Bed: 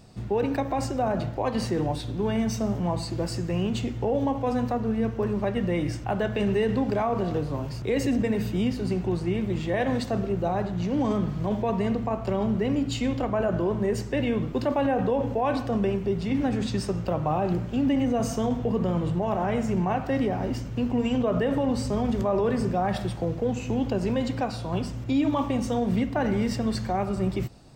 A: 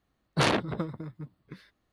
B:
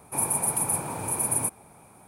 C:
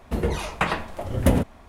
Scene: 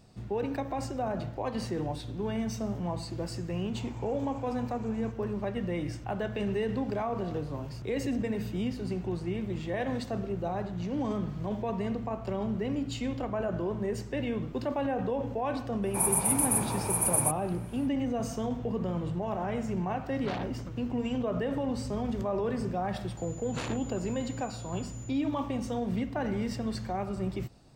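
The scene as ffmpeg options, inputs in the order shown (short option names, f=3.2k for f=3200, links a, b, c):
-filter_complex "[2:a]asplit=2[a][b];[1:a]asplit=2[c][d];[0:a]volume=-6.5dB[e];[a]aresample=16000,aresample=44100[f];[c]lowpass=4.4k[g];[d]aeval=exprs='val(0)+0.0158*sin(2*PI*7000*n/s)':c=same[h];[f]atrim=end=2.07,asetpts=PTS-STARTPTS,volume=-17dB,afade=t=in:d=0.004:c=hsin,afade=t=out:st=2.066:d=0.004:c=hsin,adelay=3630[i];[b]atrim=end=2.07,asetpts=PTS-STARTPTS,volume=-1dB,afade=t=in:d=0.05,afade=t=out:st=2.02:d=0.05,adelay=15820[j];[g]atrim=end=1.92,asetpts=PTS-STARTPTS,volume=-14.5dB,afade=t=in:d=0.004:c=hsin,afade=t=out:st=1.916:d=0.004:c=hsin,adelay=19870[k];[h]atrim=end=1.92,asetpts=PTS-STARTPTS,volume=-13.5dB,afade=t=in:d=0.004:c=hsin,afade=t=out:st=1.916:d=0.004:c=hsin,adelay=23170[l];[e][i][j][k][l]amix=inputs=5:normalize=0"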